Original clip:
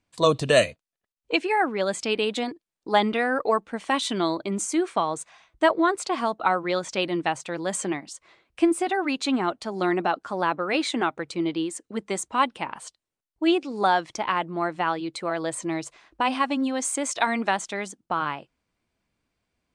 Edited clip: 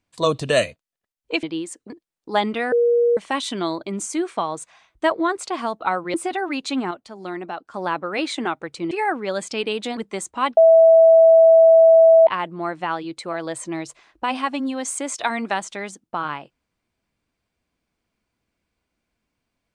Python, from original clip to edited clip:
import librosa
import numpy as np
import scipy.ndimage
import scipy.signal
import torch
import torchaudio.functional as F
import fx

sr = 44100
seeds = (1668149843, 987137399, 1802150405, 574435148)

y = fx.edit(x, sr, fx.swap(start_s=1.43, length_s=1.06, other_s=11.47, other_length_s=0.47),
    fx.bleep(start_s=3.31, length_s=0.45, hz=475.0, db=-13.5),
    fx.cut(start_s=6.73, length_s=1.97),
    fx.clip_gain(start_s=9.47, length_s=0.83, db=-7.0),
    fx.bleep(start_s=12.54, length_s=1.7, hz=654.0, db=-7.5), tone=tone)